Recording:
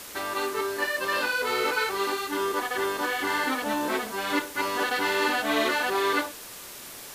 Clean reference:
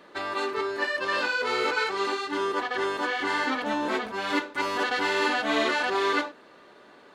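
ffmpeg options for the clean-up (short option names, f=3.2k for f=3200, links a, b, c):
-af "afwtdn=0.0089"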